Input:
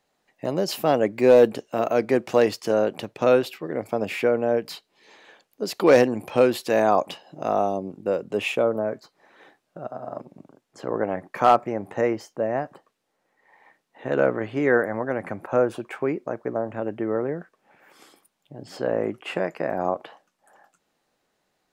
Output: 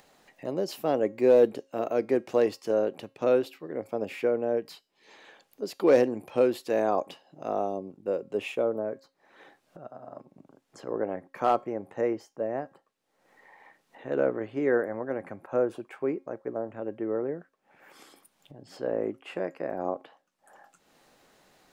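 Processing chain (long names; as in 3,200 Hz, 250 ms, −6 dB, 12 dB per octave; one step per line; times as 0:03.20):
dynamic equaliser 390 Hz, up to +7 dB, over −32 dBFS, Q 1
upward compression, threshold −33 dBFS
tuned comb filter 270 Hz, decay 0.37 s, harmonics all, mix 40%
level −6 dB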